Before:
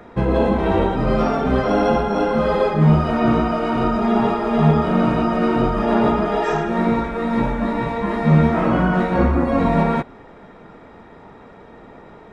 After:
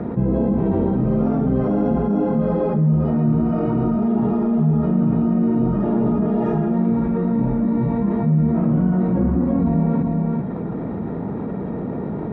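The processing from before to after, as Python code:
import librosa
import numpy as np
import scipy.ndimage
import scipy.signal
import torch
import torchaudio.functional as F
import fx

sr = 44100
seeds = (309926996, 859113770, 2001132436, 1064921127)

y = fx.bandpass_q(x, sr, hz=170.0, q=1.2)
y = y + 10.0 ** (-8.5 / 20.0) * np.pad(y, (int(395 * sr / 1000.0), 0))[:len(y)]
y = fx.env_flatten(y, sr, amount_pct=70)
y = y * librosa.db_to_amplitude(-4.0)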